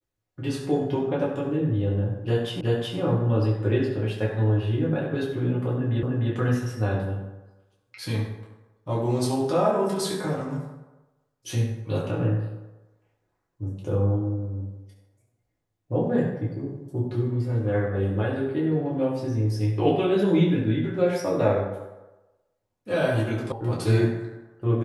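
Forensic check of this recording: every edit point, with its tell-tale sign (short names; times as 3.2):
2.61 repeat of the last 0.37 s
6.03 repeat of the last 0.3 s
23.52 sound cut off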